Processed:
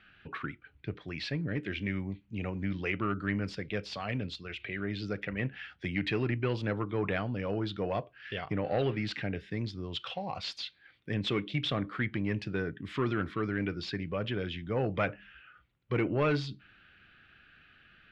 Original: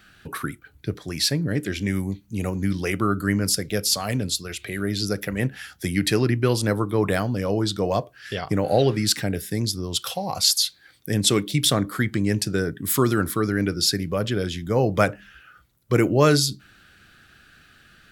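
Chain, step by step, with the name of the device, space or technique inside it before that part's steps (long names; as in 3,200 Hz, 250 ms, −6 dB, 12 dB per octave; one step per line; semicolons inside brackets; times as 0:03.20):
overdriven synthesiser ladder filter (soft clipping −12 dBFS, distortion −17 dB; transistor ladder low-pass 3,200 Hz, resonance 45%)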